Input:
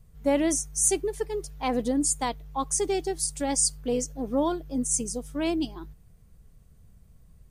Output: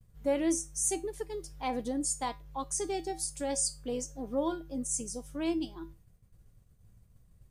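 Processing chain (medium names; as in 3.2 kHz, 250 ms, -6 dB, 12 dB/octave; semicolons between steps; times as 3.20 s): feedback comb 110 Hz, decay 0.24 s, harmonics odd, mix 70%; in parallel at -2 dB: compression, threshold -49 dBFS, peak gain reduction 22 dB; on the sum: expander -52 dBFS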